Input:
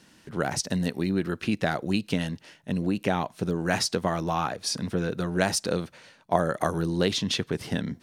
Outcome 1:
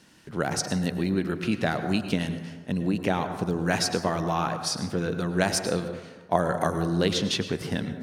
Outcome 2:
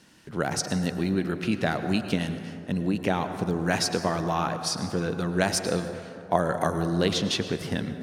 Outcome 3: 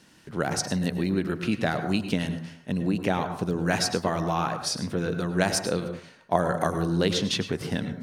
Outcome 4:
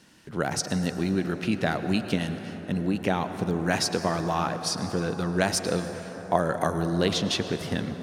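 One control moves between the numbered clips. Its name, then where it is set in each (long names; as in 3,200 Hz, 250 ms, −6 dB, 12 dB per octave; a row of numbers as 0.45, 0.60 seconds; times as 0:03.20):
dense smooth reverb, RT60: 1.2, 2.5, 0.53, 5.3 seconds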